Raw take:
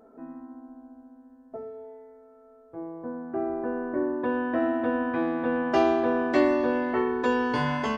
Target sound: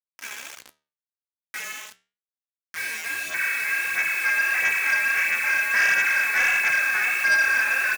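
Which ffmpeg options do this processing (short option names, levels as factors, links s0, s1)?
-filter_complex "[0:a]aeval=exprs='max(val(0),0)':c=same,lowpass=f=2200:t=q:w=0.5098,lowpass=f=2200:t=q:w=0.6013,lowpass=f=2200:t=q:w=0.9,lowpass=f=2200:t=q:w=2.563,afreqshift=-2600,equalizer=f=1600:w=5.8:g=14,asplit=2[s0][s1];[s1]aecho=0:1:12|38|53:0.282|0.299|0.335[s2];[s0][s2]amix=inputs=2:normalize=0,dynaudnorm=f=130:g=3:m=1.88,asplit=2[s3][s4];[s4]adelay=83,lowpass=f=990:p=1,volume=0.299,asplit=2[s5][s6];[s6]adelay=83,lowpass=f=990:p=1,volume=0.18[s7];[s5][s7]amix=inputs=2:normalize=0[s8];[s3][s8]amix=inputs=2:normalize=0,acrusher=bits=4:mix=0:aa=0.000001,aphaser=in_gain=1:out_gain=1:delay=4.8:decay=0.5:speed=1.5:type=sinusoidal,highpass=f=200:p=1,flanger=delay=9.5:depth=6.7:regen=-77:speed=0.35:shape=triangular,asoftclip=type=tanh:threshold=0.158,volume=1.12"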